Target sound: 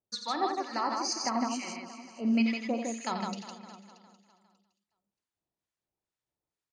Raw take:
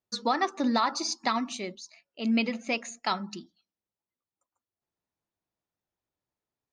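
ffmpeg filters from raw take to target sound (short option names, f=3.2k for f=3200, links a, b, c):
-filter_complex "[0:a]acrossover=split=1100[a][b];[a]aeval=exprs='val(0)*(1-1/2+1/2*cos(2*PI*2.2*n/s))':c=same[c];[b]aeval=exprs='val(0)*(1-1/2-1/2*cos(2*PI*2.2*n/s))':c=same[d];[c][d]amix=inputs=2:normalize=0,asplit=2[e][f];[f]aecho=0:1:406|812|1218:0.158|0.0602|0.0229[g];[e][g]amix=inputs=2:normalize=0,aresample=22050,aresample=44100,asettb=1/sr,asplit=3[h][i][j];[h]atrim=end=0.604[k];[i]atrim=start=0.6:end=2.45,asetpts=PTS-STARTPTS,afade=t=in:d=0.004:c=qsin,afade=t=out:st=1.846:d=0.004:c=qsin,asuperstop=centerf=3600:order=8:qfactor=3.4[l];[j]atrim=start=2.446[m];[k][l]acrossfade=d=0.004:c1=hsin:c2=qsin[n];[n][m]acrossfade=d=0.004:c1=qsin:c2=hsin,asplit=2[o][p];[p]aecho=0:1:48|87|158|357|629:0.211|0.398|0.631|0.158|0.119[q];[o][q]amix=inputs=2:normalize=0"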